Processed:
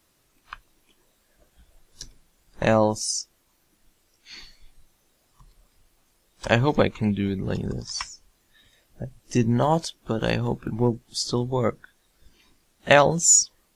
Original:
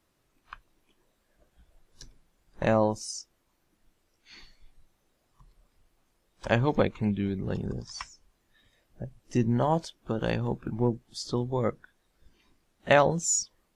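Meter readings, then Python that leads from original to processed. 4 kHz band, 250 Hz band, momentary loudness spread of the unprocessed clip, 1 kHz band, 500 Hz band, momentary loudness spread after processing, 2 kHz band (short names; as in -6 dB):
+9.0 dB, +4.0 dB, 17 LU, +4.5 dB, +4.0 dB, 17 LU, +6.0 dB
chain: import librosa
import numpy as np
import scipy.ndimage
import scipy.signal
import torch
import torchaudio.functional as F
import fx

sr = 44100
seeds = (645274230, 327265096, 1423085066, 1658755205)

y = fx.high_shelf(x, sr, hz=3100.0, db=8.0)
y = y * librosa.db_to_amplitude(4.0)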